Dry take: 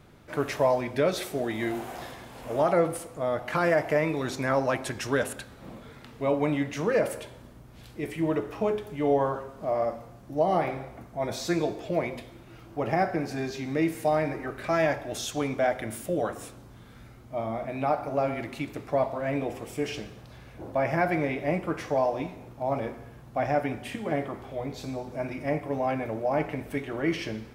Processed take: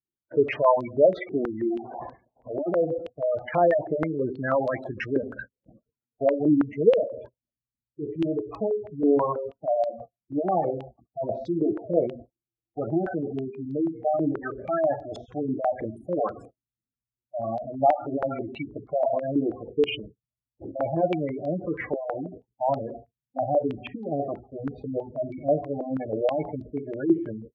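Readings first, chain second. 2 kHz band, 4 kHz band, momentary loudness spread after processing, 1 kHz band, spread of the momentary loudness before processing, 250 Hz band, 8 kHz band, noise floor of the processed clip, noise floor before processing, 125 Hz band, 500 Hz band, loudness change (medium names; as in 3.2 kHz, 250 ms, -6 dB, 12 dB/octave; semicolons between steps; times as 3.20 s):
-5.5 dB, -4.5 dB, 14 LU, +0.5 dB, 13 LU, +3.0 dB, under -25 dB, under -85 dBFS, -49 dBFS, -2.0 dB, +2.5 dB, +2.0 dB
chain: gate -40 dBFS, range -48 dB; spectral gate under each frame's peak -10 dB strong; step-sequenced low-pass 6.2 Hz 340–4200 Hz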